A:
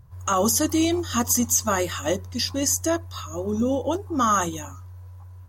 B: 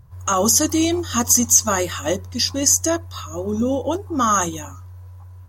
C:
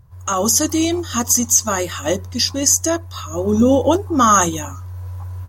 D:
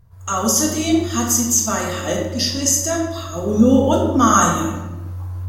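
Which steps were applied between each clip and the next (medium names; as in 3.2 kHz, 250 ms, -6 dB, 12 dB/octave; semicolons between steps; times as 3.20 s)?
dynamic bell 6.1 kHz, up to +6 dB, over -34 dBFS, Q 1.6; trim +2.5 dB
level rider gain up to 13.5 dB; trim -1 dB
simulated room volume 570 m³, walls mixed, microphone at 1.7 m; trim -4.5 dB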